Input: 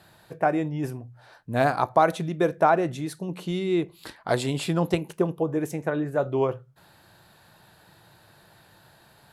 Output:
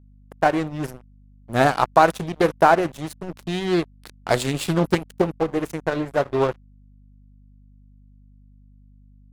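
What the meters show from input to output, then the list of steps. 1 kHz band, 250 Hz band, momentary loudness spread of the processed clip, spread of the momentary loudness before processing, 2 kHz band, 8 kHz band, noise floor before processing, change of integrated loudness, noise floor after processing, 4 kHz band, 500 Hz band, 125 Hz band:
+5.0 dB, +2.5 dB, 16 LU, 11 LU, +6.0 dB, +5.0 dB, −57 dBFS, +4.0 dB, −51 dBFS, +5.5 dB, +3.0 dB, +2.0 dB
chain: high-shelf EQ 4,000 Hz +6.5 dB
dead-zone distortion −32.5 dBFS
mains hum 50 Hz, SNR 27 dB
highs frequency-modulated by the lows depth 0.37 ms
level +5.5 dB

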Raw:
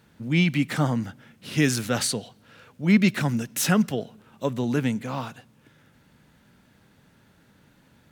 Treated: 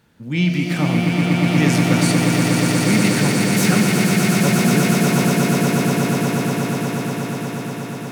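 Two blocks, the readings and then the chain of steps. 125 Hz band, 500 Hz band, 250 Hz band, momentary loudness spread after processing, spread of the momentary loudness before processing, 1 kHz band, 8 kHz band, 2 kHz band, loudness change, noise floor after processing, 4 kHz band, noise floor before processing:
+10.5 dB, +10.0 dB, +9.0 dB, 9 LU, 12 LU, +11.0 dB, +9.0 dB, +9.5 dB, +7.5 dB, −29 dBFS, +9.0 dB, −60 dBFS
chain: echo that builds up and dies away 120 ms, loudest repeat 8, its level −5 dB
reverb with rising layers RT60 2.2 s, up +12 semitones, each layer −8 dB, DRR 4 dB

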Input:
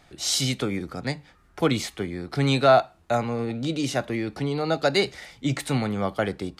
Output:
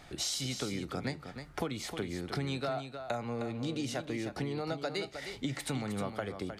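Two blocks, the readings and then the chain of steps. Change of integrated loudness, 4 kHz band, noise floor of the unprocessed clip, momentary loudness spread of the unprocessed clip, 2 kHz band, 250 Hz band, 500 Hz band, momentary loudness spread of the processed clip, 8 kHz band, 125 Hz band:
−11.5 dB, −10.0 dB, −57 dBFS, 11 LU, −11.0 dB, −10.0 dB, −13.0 dB, 4 LU, −8.5 dB, −10.5 dB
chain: downward compressor 12 to 1, threshold −35 dBFS, peak gain reduction 23 dB
single-tap delay 311 ms −8.5 dB
level +2.5 dB

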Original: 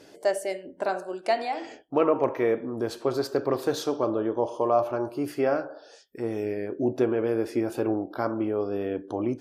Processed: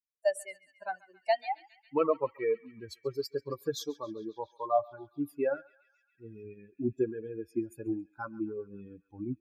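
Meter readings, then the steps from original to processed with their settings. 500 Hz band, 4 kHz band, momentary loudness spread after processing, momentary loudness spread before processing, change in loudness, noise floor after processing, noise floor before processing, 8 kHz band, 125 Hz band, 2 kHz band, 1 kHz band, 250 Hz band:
−7.5 dB, −5.5 dB, 16 LU, 7 LU, −7.0 dB, −75 dBFS, −52 dBFS, −5.0 dB, −8.0 dB, −6.5 dB, −6.0 dB, −8.5 dB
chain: spectral dynamics exaggerated over time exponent 3
feedback echo with a band-pass in the loop 137 ms, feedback 82%, band-pass 2,800 Hz, level −18.5 dB

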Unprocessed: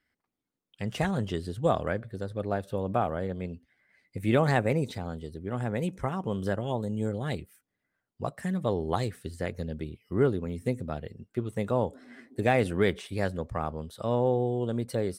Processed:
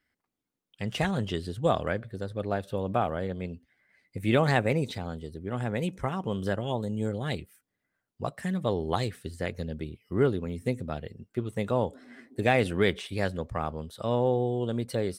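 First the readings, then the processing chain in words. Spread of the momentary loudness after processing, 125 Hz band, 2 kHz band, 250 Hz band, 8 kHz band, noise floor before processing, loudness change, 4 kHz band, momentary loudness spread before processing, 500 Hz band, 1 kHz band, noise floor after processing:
12 LU, 0.0 dB, +2.0 dB, 0.0 dB, +0.5 dB, −85 dBFS, +0.5 dB, +4.5 dB, 12 LU, 0.0 dB, +0.5 dB, −85 dBFS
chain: dynamic equaliser 3,200 Hz, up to +5 dB, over −51 dBFS, Q 0.99

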